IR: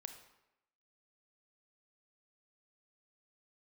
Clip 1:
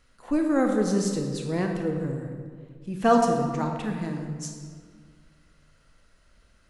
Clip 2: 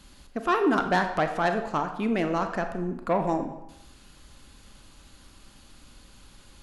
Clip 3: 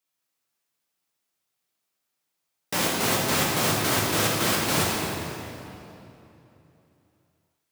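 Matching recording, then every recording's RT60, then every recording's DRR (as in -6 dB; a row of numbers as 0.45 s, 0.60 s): 2; 1.8 s, 0.90 s, 3.0 s; 2.5 dB, 6.5 dB, -4.0 dB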